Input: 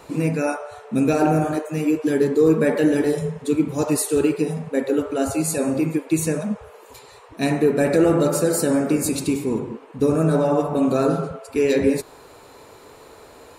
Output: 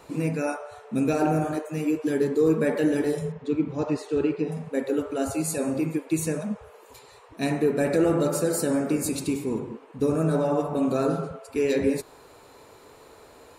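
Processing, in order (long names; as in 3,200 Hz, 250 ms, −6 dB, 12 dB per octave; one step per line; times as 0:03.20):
0:03.32–0:04.52: high-frequency loss of the air 170 metres
level −5 dB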